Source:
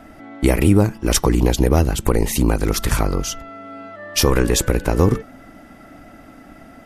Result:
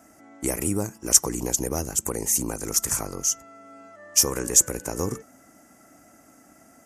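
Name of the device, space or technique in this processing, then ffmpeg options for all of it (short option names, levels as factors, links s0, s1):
budget condenser microphone: -af "highpass=89,equalizer=f=120:t=o:w=2.5:g=-4,highshelf=f=5000:t=q:w=3:g=10.5,volume=0.316"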